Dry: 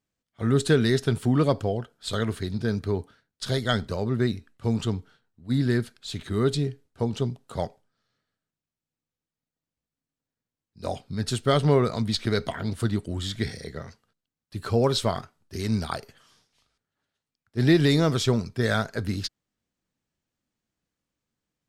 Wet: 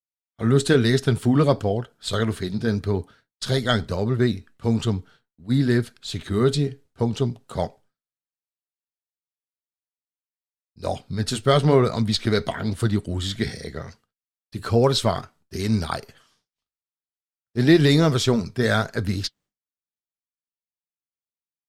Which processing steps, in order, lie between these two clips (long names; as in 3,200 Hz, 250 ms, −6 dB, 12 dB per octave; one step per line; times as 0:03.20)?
flanger 1 Hz, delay 0.5 ms, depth 5.2 ms, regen −72%
downward expander −57 dBFS
level +8 dB